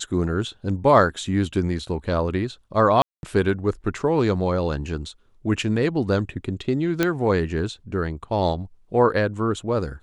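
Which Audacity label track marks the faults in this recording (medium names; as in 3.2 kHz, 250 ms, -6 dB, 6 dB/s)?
3.020000	3.230000	dropout 211 ms
7.030000	7.030000	pop -6 dBFS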